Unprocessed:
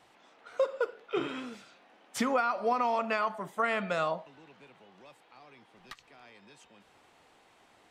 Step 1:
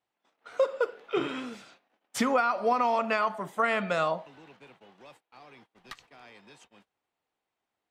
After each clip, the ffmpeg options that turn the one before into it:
ffmpeg -i in.wav -af "agate=range=-27dB:threshold=-57dB:ratio=16:detection=peak,volume=3dB" out.wav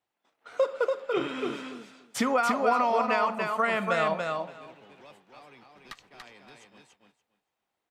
ffmpeg -i in.wav -af "aecho=1:1:287|574|861:0.631|0.0946|0.0142" out.wav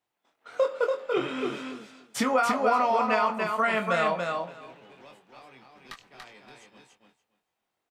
ffmpeg -i in.wav -filter_complex "[0:a]asplit=2[link_01][link_02];[link_02]adelay=23,volume=-5.5dB[link_03];[link_01][link_03]amix=inputs=2:normalize=0" out.wav

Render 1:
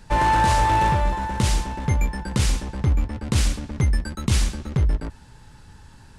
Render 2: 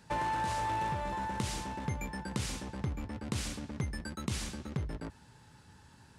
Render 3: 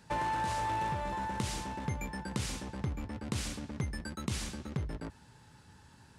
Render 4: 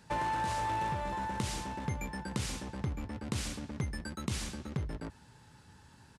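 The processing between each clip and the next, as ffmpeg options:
ffmpeg -i in.wav -af "highpass=96,acompressor=threshold=-23dB:ratio=6,volume=-7.5dB" out.wav
ffmpeg -i in.wav -af anull out.wav
ffmpeg -i in.wav -af "aresample=32000,aresample=44100" out.wav

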